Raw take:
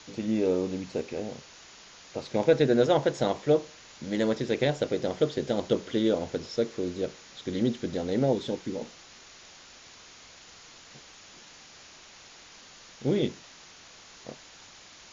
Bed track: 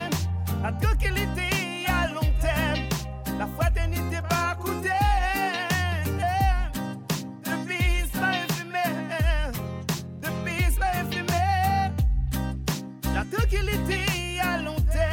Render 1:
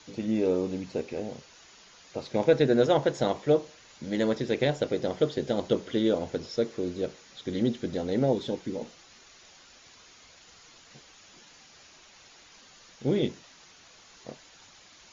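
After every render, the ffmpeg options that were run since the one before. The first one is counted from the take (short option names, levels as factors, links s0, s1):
-af "afftdn=nr=6:nf=-51"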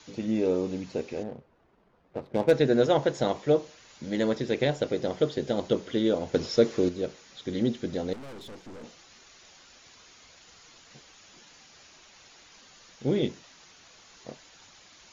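-filter_complex "[0:a]asettb=1/sr,asplit=3[s0][s1][s2];[s0]atrim=end=1.234[s3];[s1]atrim=start=1.23:end=2.52,asetpts=PTS-STARTPTS,afade=t=in:d=0.004:c=qsin,afade=t=out:st=1.286:d=0.004:c=qsin,adynamicsmooth=sensitivity=6:basefreq=620[s4];[s2]atrim=start=2.516[s5];[s3][s4]acrossfade=d=0.004:c1=hsin:c2=qsin[s6];[s6][s5]acrossfade=d=0.004:c1=qsin:c2=hsin,asettb=1/sr,asplit=3[s7][s8][s9];[s7]atrim=end=6.344[s10];[s8]atrim=start=6.34:end=6.89,asetpts=PTS-STARTPTS,afade=t=in:d=0.004:c=qsin,afade=t=out:st=0.546:d=0.004:c=qsin,acontrast=67[s11];[s9]atrim=start=6.886[s12];[s10][s11]acrossfade=d=0.004:c1=hsin:c2=qsin[s13];[s13][s12]acrossfade=d=0.004:c1=qsin:c2=hsin,asettb=1/sr,asplit=3[s14][s15][s16];[s14]atrim=end=8.134[s17];[s15]atrim=start=8.13:end=8.84,asetpts=PTS-STARTPTS,afade=t=in:d=0.004:c=qsin,afade=t=out:st=0.706:d=0.004:c=qsin,aeval=exprs='(tanh(126*val(0)+0.55)-tanh(0.55))/126':c=same[s18];[s16]atrim=start=8.836[s19];[s17][s18]acrossfade=d=0.004:c1=hsin:c2=qsin[s20];[s20][s19]acrossfade=d=0.004:c1=qsin:c2=hsin"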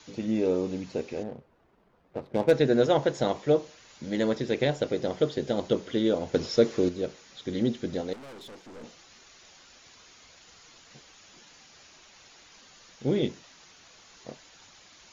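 -filter_complex "[0:a]asettb=1/sr,asplit=3[s0][s1][s2];[s0]atrim=end=8.014[s3];[s1]atrim=start=8.01:end=8.76,asetpts=PTS-STARTPTS,afade=t=in:d=0.004:c=qsin,afade=t=out:st=0.746:d=0.004:c=qsin,lowshelf=f=190:g=-9[s4];[s2]atrim=start=8.756[s5];[s3][s4]acrossfade=d=0.004:c1=hsin:c2=qsin[s6];[s6][s5]acrossfade=d=0.004:c1=qsin:c2=hsin"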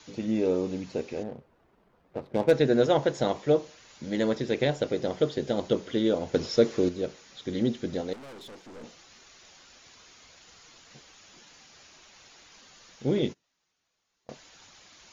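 -filter_complex "[0:a]asettb=1/sr,asplit=3[s0][s1][s2];[s0]atrim=end=13.184[s3];[s1]atrim=start=13.18:end=14.3,asetpts=PTS-STARTPTS,afade=t=in:d=0.004:c=qsin,afade=t=out:st=1.116:d=0.004:c=qsin,agate=range=0.0562:threshold=0.00891:ratio=16:release=100:detection=peak[s4];[s2]atrim=start=14.296[s5];[s3][s4]acrossfade=d=0.004:c1=hsin:c2=qsin[s6];[s6][s5]acrossfade=d=0.004:c1=qsin:c2=hsin"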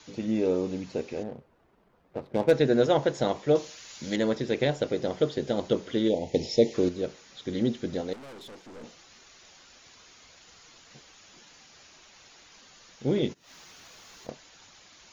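-filter_complex "[0:a]asettb=1/sr,asplit=3[s0][s1][s2];[s0]atrim=end=3.554[s3];[s1]atrim=start=3.55:end=4.16,asetpts=PTS-STARTPTS,afade=t=in:d=0.004:c=qsin,afade=t=out:st=0.606:d=0.004:c=qsin,highshelf=f=2200:g=11[s4];[s2]atrim=start=4.156[s5];[s3][s4]acrossfade=d=0.004:c1=hsin:c2=qsin[s6];[s6][s5]acrossfade=d=0.004:c1=qsin:c2=hsin,asplit=3[s7][s8][s9];[s7]afade=t=out:st=6.08:d=0.02[s10];[s8]asuperstop=centerf=1300:order=12:qfactor=1.4,afade=t=in:st=6.08:d=0.02,afade=t=out:st=6.73:d=0.02[s11];[s9]afade=t=in:st=6.73:d=0.02[s12];[s10][s11][s12]amix=inputs=3:normalize=0,asettb=1/sr,asplit=3[s13][s14][s15];[s13]atrim=end=13.114[s16];[s14]atrim=start=13.11:end=14.3,asetpts=PTS-STARTPTS,afade=t=in:d=0.004:c=qsin,afade=t=out:st=1.186:d=0.004:c=qsin,acompressor=mode=upward:threshold=0.0447:ratio=2.5:attack=3.2:release=140:knee=2.83:detection=peak[s17];[s15]atrim=start=14.296[s18];[s16][s17]acrossfade=d=0.004:c1=hsin:c2=qsin[s19];[s19][s18]acrossfade=d=0.004:c1=qsin:c2=hsin"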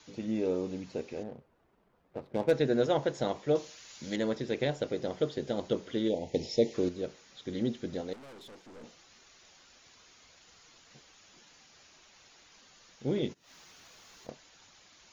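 -af "volume=0.562"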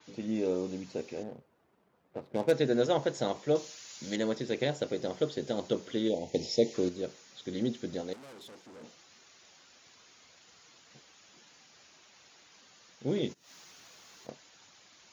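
-af "highpass=100,adynamicequalizer=threshold=0.002:dfrequency=4500:dqfactor=0.7:tfrequency=4500:tqfactor=0.7:attack=5:release=100:ratio=0.375:range=3:mode=boostabove:tftype=highshelf"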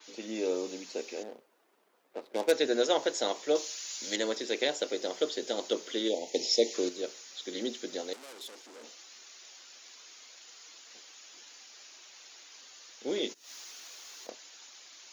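-af "highpass=f=290:w=0.5412,highpass=f=290:w=1.3066,highshelf=f=2400:g=10"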